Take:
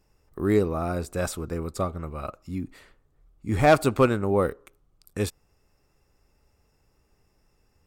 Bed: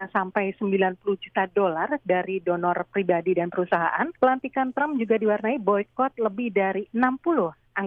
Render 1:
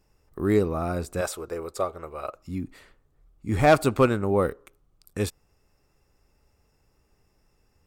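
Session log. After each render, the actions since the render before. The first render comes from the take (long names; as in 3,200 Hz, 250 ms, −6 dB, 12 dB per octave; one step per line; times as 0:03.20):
0:01.21–0:02.35: low shelf with overshoot 310 Hz −11 dB, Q 1.5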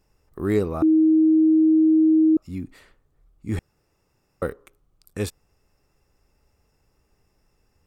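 0:00.82–0:02.37: beep over 316 Hz −13 dBFS
0:03.59–0:04.42: fill with room tone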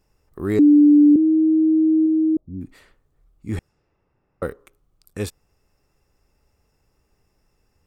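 0:00.59–0:01.16: beep over 294 Hz −8 dBFS
0:02.06–0:02.61: Gaussian smoothing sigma 14 samples
0:03.52–0:04.49: low-pass that shuts in the quiet parts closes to 1,900 Hz, open at −27.5 dBFS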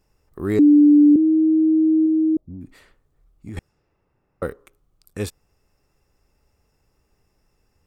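0:02.44–0:03.57: downward compressor, threshold −31 dBFS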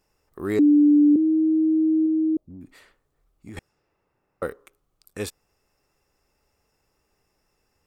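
low-shelf EQ 230 Hz −10 dB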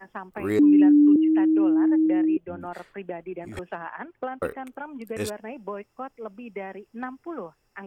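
mix in bed −12.5 dB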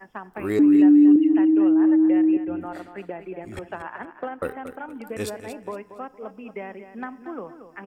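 repeating echo 231 ms, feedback 31%, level −11 dB
feedback delay network reverb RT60 0.91 s, high-frequency decay 0.5×, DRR 18.5 dB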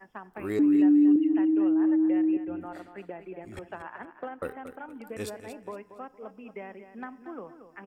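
level −6 dB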